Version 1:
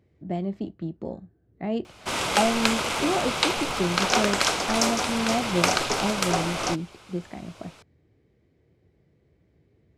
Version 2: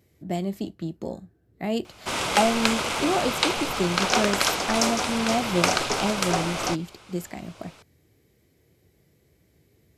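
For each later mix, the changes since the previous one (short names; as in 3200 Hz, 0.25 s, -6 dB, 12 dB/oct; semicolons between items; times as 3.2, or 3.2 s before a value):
speech: remove tape spacing loss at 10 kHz 27 dB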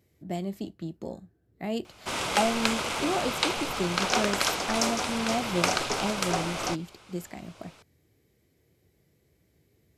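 speech -4.5 dB; background -3.5 dB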